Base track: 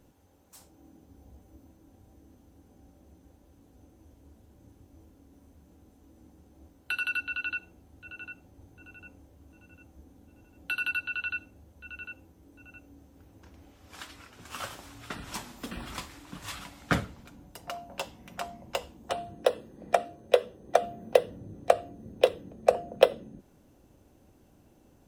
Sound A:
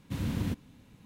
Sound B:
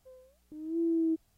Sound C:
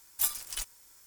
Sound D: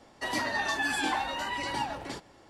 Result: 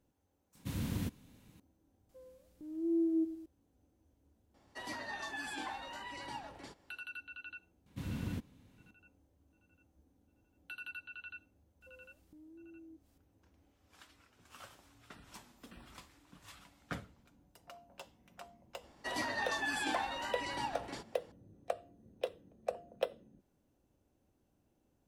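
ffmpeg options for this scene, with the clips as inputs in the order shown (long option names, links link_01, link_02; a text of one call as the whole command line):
ffmpeg -i bed.wav -i cue0.wav -i cue1.wav -i cue2.wav -i cue3.wav -filter_complex "[1:a]asplit=2[link_01][link_02];[2:a]asplit=2[link_03][link_04];[4:a]asplit=2[link_05][link_06];[0:a]volume=-15.5dB[link_07];[link_01]highshelf=frequency=5700:gain=9[link_08];[link_03]aecho=1:1:105|210|315|420|525:0.224|0.103|0.0474|0.0218|0.01[link_09];[link_04]acompressor=threshold=-52dB:ratio=6:attack=3.2:release=140:knee=1:detection=peak[link_10];[link_08]atrim=end=1.05,asetpts=PTS-STARTPTS,volume=-5.5dB,afade=type=in:duration=0.004:curve=hsin,afade=type=out:start_time=1.046:duration=0.004:curve=hsin,adelay=550[link_11];[link_09]atrim=end=1.37,asetpts=PTS-STARTPTS,volume=-3dB,afade=type=in:duration=0.004:curve=hsin,afade=type=out:start_time=1.366:duration=0.004:curve=hsin,adelay=2090[link_12];[link_05]atrim=end=2.49,asetpts=PTS-STARTPTS,volume=-12.5dB,afade=type=in:duration=0.004:curve=hsin,afade=type=out:start_time=2.486:duration=0.004:curve=hsin,adelay=4540[link_13];[link_02]atrim=end=1.05,asetpts=PTS-STARTPTS,volume=-7.5dB,afade=type=in:duration=0.004:curve=hsin,afade=type=out:start_time=1.046:duration=0.004:curve=hsin,adelay=346626S[link_14];[link_10]atrim=end=1.37,asetpts=PTS-STARTPTS,volume=-4dB,afade=type=in:duration=0.004:curve=hsin,afade=type=out:start_time=1.366:duration=0.004:curve=hsin,adelay=11810[link_15];[link_06]atrim=end=2.49,asetpts=PTS-STARTPTS,volume=-6.5dB,afade=type=in:duration=0.004:curve=hsin,afade=type=out:start_time=2.486:duration=0.004:curve=hsin,adelay=18830[link_16];[link_07][link_11][link_12][link_13][link_14][link_15][link_16]amix=inputs=7:normalize=0" out.wav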